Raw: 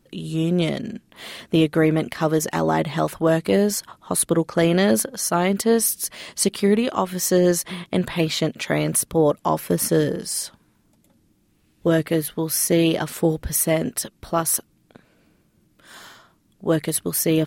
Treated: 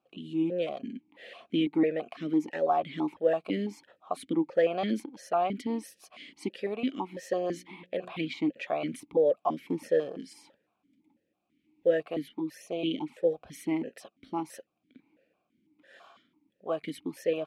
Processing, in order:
0:07.52–0:08.12: mains-hum notches 60/120/180/240/300/360/420/480/540 Hz
0:12.29–0:13.27: flanger swept by the level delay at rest 10.9 ms, full sweep at −18 dBFS
formant filter that steps through the vowels 6 Hz
level +1.5 dB

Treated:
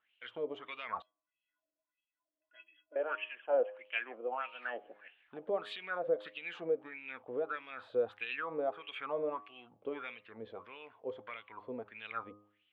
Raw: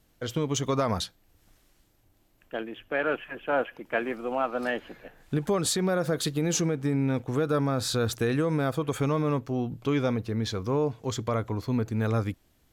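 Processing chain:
high shelf with overshoot 4,300 Hz −11.5 dB, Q 3
LFO wah 1.6 Hz 490–2,900 Hz, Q 5.3
parametric band 140 Hz −11 dB 0.31 octaves
hum removal 103.4 Hz, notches 12
0:01.02–0:02.96: stiff-string resonator 300 Hz, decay 0.23 s, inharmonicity 0.03
level +1 dB

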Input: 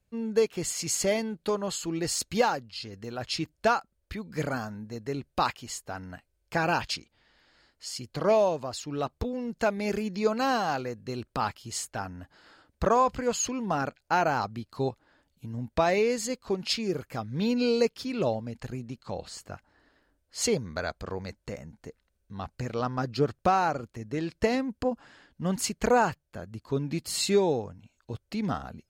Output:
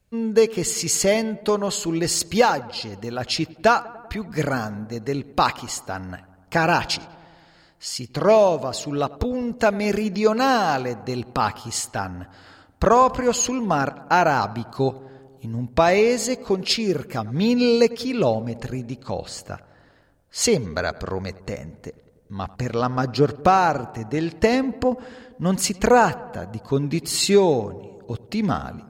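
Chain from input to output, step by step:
feedback echo with a low-pass in the loop 97 ms, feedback 74%, low-pass 2,200 Hz, level −20 dB
level +7.5 dB

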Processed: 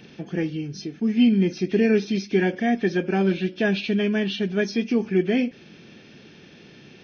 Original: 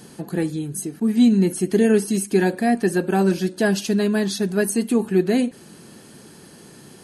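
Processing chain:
hearing-aid frequency compression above 1,900 Hz 1.5 to 1
graphic EQ with 15 bands 1,000 Hz −7 dB, 2,500 Hz +10 dB, 6,300 Hz −12 dB
level −2.5 dB

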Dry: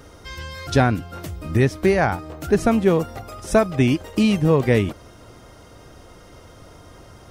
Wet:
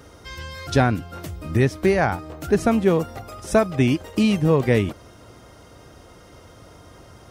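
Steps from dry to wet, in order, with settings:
high-pass filter 43 Hz
level −1 dB

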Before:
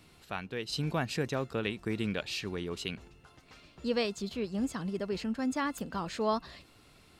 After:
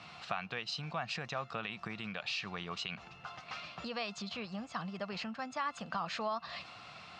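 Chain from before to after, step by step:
parametric band 390 Hz −13.5 dB 0.78 octaves
brickwall limiter −27 dBFS, peak gain reduction 8.5 dB
downward compressor 6 to 1, threshold −47 dBFS, peak gain reduction 14.5 dB
loudspeaker in its box 170–5,800 Hz, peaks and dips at 270 Hz −10 dB, 720 Hz +8 dB, 1,200 Hz +8 dB, 2,600 Hz +4 dB
one half of a high-frequency compander decoder only
level +10 dB

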